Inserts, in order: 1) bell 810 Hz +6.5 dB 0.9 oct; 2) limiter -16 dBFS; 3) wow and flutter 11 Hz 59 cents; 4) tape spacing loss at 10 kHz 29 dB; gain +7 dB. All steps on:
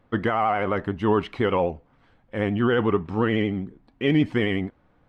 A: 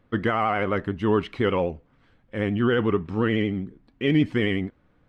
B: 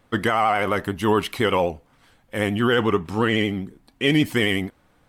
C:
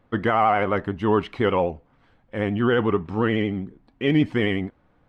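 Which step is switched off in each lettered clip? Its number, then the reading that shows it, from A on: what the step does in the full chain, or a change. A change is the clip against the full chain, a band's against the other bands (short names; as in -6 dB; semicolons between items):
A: 1, 1 kHz band -2.5 dB; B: 4, 4 kHz band +7.5 dB; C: 2, momentary loudness spread change +1 LU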